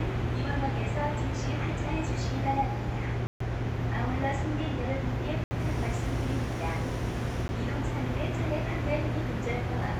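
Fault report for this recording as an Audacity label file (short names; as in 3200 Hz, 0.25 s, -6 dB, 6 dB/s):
3.270000	3.400000	gap 0.134 s
5.440000	5.510000	gap 70 ms
7.480000	7.490000	gap 10 ms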